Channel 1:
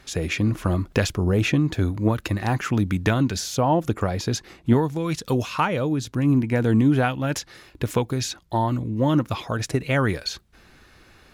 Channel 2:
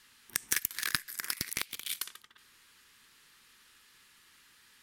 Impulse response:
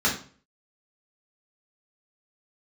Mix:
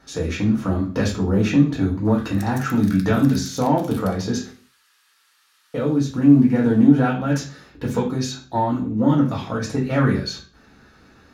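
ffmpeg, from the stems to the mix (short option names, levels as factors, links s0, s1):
-filter_complex "[0:a]equalizer=f=290:t=o:w=2.9:g=2.5,acontrast=63,volume=0.211,asplit=3[s0][s1][s2];[s0]atrim=end=4.5,asetpts=PTS-STARTPTS,afade=t=out:st=4.496:d=0.004:c=hsin[s3];[s1]atrim=start=4.5:end=5.74,asetpts=PTS-STARTPTS,volume=0[s4];[s2]atrim=start=5.74,asetpts=PTS-STARTPTS,afade=t=in:d=0.004:c=hsin[s5];[s3][s4][s5]concat=n=3:v=0:a=1,asplit=2[s6][s7];[s7]volume=0.398[s8];[1:a]highpass=750,acompressor=threshold=0.01:ratio=6,adelay=2050,volume=1.06,asplit=2[s9][s10];[s10]volume=0.15[s11];[2:a]atrim=start_sample=2205[s12];[s8][s11]amix=inputs=2:normalize=0[s13];[s13][s12]afir=irnorm=-1:irlink=0[s14];[s6][s9][s14]amix=inputs=3:normalize=0"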